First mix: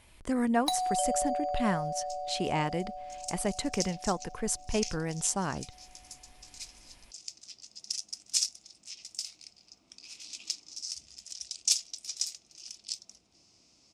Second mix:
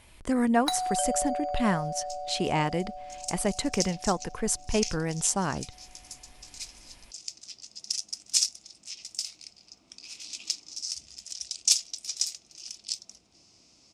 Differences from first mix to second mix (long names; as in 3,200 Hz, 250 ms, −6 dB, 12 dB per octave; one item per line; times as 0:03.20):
speech +3.5 dB
first sound: remove phaser with its sweep stopped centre 390 Hz, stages 6
second sound +4.0 dB